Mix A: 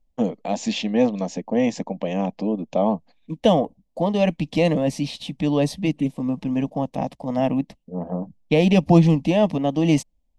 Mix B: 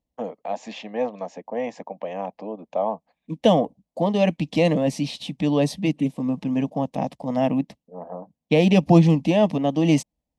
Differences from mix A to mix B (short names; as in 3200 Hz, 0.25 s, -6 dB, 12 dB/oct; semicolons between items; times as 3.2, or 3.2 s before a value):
first voice: add three-band isolator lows -15 dB, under 490 Hz, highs -14 dB, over 2000 Hz; master: add HPF 91 Hz